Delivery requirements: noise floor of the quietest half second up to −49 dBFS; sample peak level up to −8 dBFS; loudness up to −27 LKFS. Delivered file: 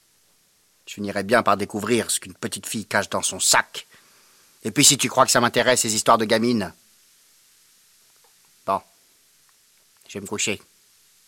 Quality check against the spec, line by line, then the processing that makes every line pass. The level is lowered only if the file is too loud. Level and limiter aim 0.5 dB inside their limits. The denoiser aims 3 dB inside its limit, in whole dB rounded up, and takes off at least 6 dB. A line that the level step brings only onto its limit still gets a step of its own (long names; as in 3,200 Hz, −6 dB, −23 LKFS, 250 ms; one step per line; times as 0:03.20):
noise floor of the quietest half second −61 dBFS: in spec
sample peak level −2.5 dBFS: out of spec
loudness −20.0 LKFS: out of spec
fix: level −7.5 dB